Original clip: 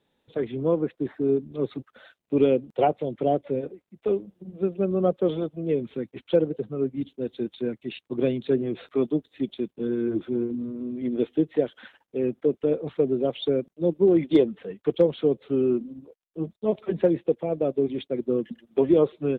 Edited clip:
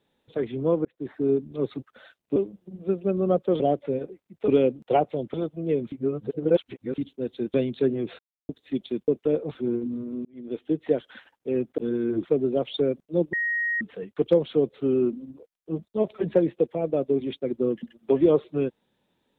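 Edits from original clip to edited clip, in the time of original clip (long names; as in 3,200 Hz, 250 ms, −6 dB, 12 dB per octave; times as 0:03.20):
0:00.85–0:01.19: fade in
0:02.36–0:03.22: swap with 0:04.10–0:05.34
0:05.92–0:06.98: reverse
0:07.54–0:08.22: remove
0:08.87–0:09.17: silence
0:09.76–0:10.23: swap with 0:12.46–0:12.93
0:10.93–0:11.58: fade in
0:14.01–0:14.49: beep over 1,880 Hz −23 dBFS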